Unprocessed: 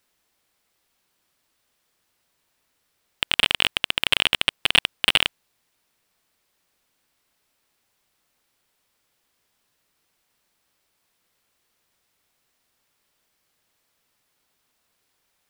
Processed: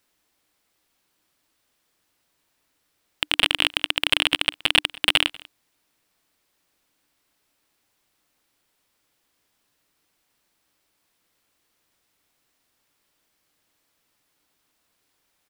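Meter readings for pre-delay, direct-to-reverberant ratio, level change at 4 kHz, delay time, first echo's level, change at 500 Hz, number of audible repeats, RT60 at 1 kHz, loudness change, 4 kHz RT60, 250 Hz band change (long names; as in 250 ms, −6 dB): no reverb audible, no reverb audible, 0.0 dB, 192 ms, −23.0 dB, 0.0 dB, 1, no reverb audible, 0.0 dB, no reverb audible, +2.5 dB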